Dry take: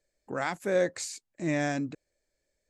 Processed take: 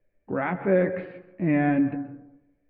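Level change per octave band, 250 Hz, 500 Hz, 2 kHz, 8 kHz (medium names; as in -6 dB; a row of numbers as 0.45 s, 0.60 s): +9.5 dB, +4.0 dB, +2.0 dB, under -40 dB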